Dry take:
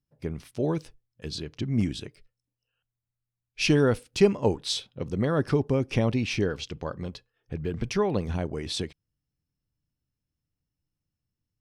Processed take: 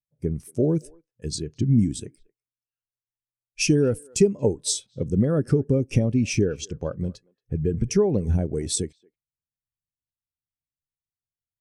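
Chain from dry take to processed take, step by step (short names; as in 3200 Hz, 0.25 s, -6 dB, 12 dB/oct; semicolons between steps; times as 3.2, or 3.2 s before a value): resonant high shelf 5600 Hz +12 dB, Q 1.5; compressor 6:1, threshold -25 dBFS, peak gain reduction 11.5 dB; speakerphone echo 0.23 s, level -18 dB; dynamic EQ 1000 Hz, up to -5 dB, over -51 dBFS, Q 2.2; spectral expander 1.5:1; gain +8 dB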